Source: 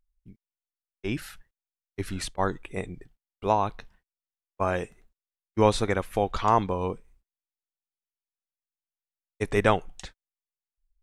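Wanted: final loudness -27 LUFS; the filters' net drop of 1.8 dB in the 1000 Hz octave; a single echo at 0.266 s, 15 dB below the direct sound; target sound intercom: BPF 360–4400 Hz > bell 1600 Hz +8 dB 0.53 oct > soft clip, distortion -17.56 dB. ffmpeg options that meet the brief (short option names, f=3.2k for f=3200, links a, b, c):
-af "highpass=360,lowpass=4.4k,equalizer=f=1k:t=o:g=-3.5,equalizer=f=1.6k:t=o:w=0.53:g=8,aecho=1:1:266:0.178,asoftclip=threshold=-11.5dB,volume=4dB"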